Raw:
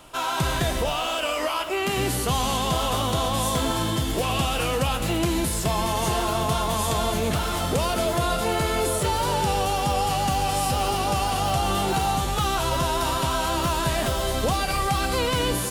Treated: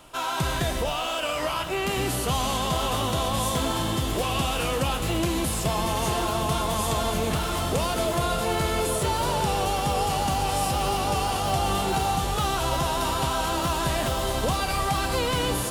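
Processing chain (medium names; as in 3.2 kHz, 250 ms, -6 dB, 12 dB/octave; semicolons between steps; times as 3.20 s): echo that smears into a reverb 1127 ms, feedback 68%, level -11 dB; trim -2 dB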